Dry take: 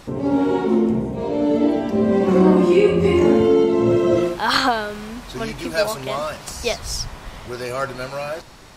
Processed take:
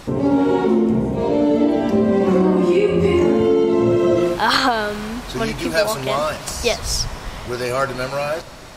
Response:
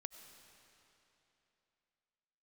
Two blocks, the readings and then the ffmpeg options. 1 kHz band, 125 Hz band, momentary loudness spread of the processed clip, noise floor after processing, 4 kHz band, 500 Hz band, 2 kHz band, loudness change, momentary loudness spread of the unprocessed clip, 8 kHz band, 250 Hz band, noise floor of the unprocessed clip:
+2.0 dB, +1.0 dB, 9 LU, −33 dBFS, +2.5 dB, +1.0 dB, +2.5 dB, +1.0 dB, 15 LU, +4.5 dB, +1.0 dB, −39 dBFS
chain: -filter_complex "[0:a]acompressor=threshold=-17dB:ratio=6,asplit=2[link_01][link_02];[1:a]atrim=start_sample=2205,asetrate=35721,aresample=44100[link_03];[link_02][link_03]afir=irnorm=-1:irlink=0,volume=-8dB[link_04];[link_01][link_04]amix=inputs=2:normalize=0,volume=3dB"

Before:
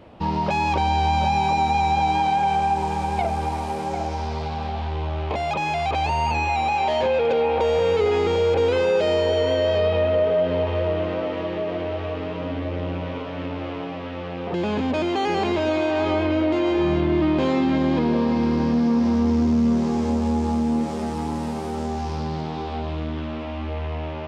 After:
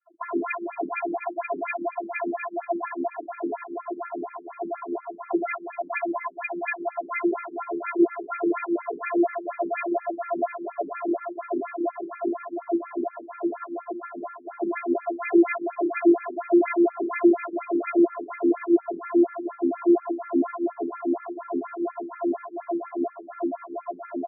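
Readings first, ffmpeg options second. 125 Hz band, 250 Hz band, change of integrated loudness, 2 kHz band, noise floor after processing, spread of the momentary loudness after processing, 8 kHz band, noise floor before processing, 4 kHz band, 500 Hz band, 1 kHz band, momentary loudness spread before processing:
below −30 dB, −2.0 dB, −4.5 dB, −3.5 dB, −46 dBFS, 12 LU, can't be measured, −30 dBFS, below −40 dB, −4.5 dB, −8.5 dB, 9 LU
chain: -filter_complex "[0:a]afftfilt=real='re*gte(hypot(re,im),0.0251)':imag='im*gte(hypot(re,im),0.0251)':win_size=1024:overlap=0.75,acrossover=split=410|1300[link_01][link_02][link_03];[link_02]acompressor=threshold=-33dB:ratio=10[link_04];[link_01][link_04][link_03]amix=inputs=3:normalize=0,aeval=exprs='max(val(0),0)':channel_layout=same,acrossover=split=900[link_05][link_06];[link_05]aeval=exprs='val(0)*(1-1/2+1/2*cos(2*PI*2.6*n/s))':channel_layout=same[link_07];[link_06]aeval=exprs='val(0)*(1-1/2-1/2*cos(2*PI*2.6*n/s))':channel_layout=same[link_08];[link_07][link_08]amix=inputs=2:normalize=0,adynamicsmooth=sensitivity=3.5:basefreq=1600,afftfilt=real='hypot(re,im)*cos(PI*b)':imag='0':win_size=512:overlap=0.75,flanger=delay=5.1:depth=3:regen=37:speed=1.5:shape=triangular,asplit=2[link_09][link_10];[link_10]aecho=0:1:15|71:0.282|0.376[link_11];[link_09][link_11]amix=inputs=2:normalize=0,alimiter=level_in=23.5dB:limit=-1dB:release=50:level=0:latency=1,afftfilt=real='re*between(b*sr/1024,280*pow(1800/280,0.5+0.5*sin(2*PI*4.2*pts/sr))/1.41,280*pow(1800/280,0.5+0.5*sin(2*PI*4.2*pts/sr))*1.41)':imag='im*between(b*sr/1024,280*pow(1800/280,0.5+0.5*sin(2*PI*4.2*pts/sr))/1.41,280*pow(1800/280,0.5+0.5*sin(2*PI*4.2*pts/sr))*1.41)':win_size=1024:overlap=0.75"

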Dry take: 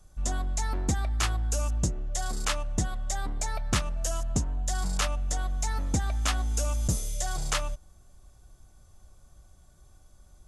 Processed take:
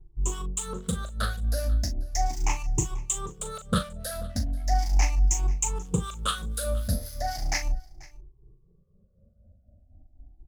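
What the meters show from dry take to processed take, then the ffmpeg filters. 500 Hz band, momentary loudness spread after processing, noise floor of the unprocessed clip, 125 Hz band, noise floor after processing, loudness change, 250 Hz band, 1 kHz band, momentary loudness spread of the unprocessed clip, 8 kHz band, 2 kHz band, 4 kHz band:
+2.0 dB, 7 LU, −56 dBFS, +0.5 dB, −61 dBFS, +1.0 dB, +1.5 dB, +2.5 dB, 5 LU, +1.5 dB, −1.0 dB, −0.5 dB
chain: -filter_complex "[0:a]afftfilt=real='re*pow(10,23/40*sin(2*PI*(0.7*log(max(b,1)*sr/1024/100)/log(2)-(0.37)*(pts-256)/sr)))':imag='im*pow(10,23/40*sin(2*PI*(0.7*log(max(b,1)*sr/1024/100)/log(2)-(0.37)*(pts-256)/sr)))':win_size=1024:overlap=0.75,acrossover=split=550[link_01][link_02];[link_02]aeval=exprs='sgn(val(0))*max(abs(val(0))-0.00841,0)':channel_layout=same[link_03];[link_01][link_03]amix=inputs=2:normalize=0,acrossover=split=1200[link_04][link_05];[link_04]aeval=exprs='val(0)*(1-0.7/2+0.7/2*cos(2*PI*4*n/s))':channel_layout=same[link_06];[link_05]aeval=exprs='val(0)*(1-0.7/2-0.7/2*cos(2*PI*4*n/s))':channel_layout=same[link_07];[link_06][link_07]amix=inputs=2:normalize=0,asplit=2[link_08][link_09];[link_09]adelay=39,volume=-9dB[link_10];[link_08][link_10]amix=inputs=2:normalize=0,aecho=1:1:487:0.075"

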